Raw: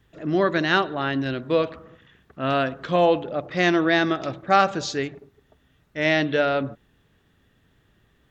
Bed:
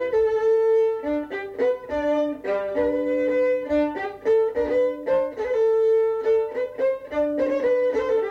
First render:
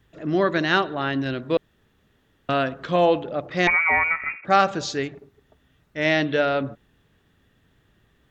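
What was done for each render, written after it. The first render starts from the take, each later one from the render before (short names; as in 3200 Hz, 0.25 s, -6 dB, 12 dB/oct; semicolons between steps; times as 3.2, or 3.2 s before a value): 1.57–2.49 room tone; 3.67–4.45 inverted band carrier 2600 Hz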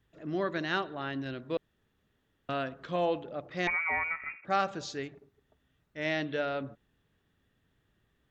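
gain -11 dB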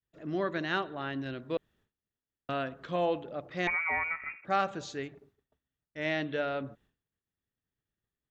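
expander -60 dBFS; dynamic EQ 5100 Hz, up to -7 dB, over -60 dBFS, Q 3.1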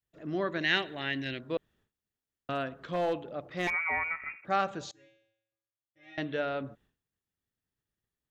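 0.61–1.39 resonant high shelf 1600 Hz +7 dB, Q 3; 2.55–3.73 hard clip -24.5 dBFS; 4.91–6.18 resonator 110 Hz, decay 0.77 s, harmonics odd, mix 100%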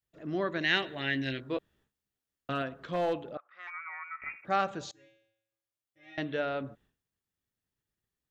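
0.81–2.62 doubler 15 ms -6 dB; 3.37–4.22 ladder band-pass 1400 Hz, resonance 70%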